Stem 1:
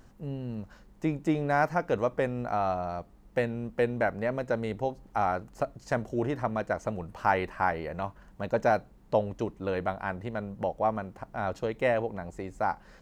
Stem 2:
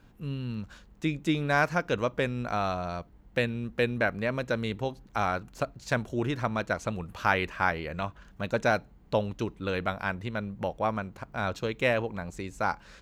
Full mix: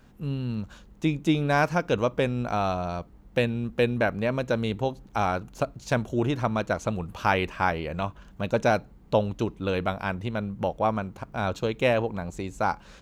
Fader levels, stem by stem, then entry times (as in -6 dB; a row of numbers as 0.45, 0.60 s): -4.5, +1.5 dB; 0.00, 0.00 s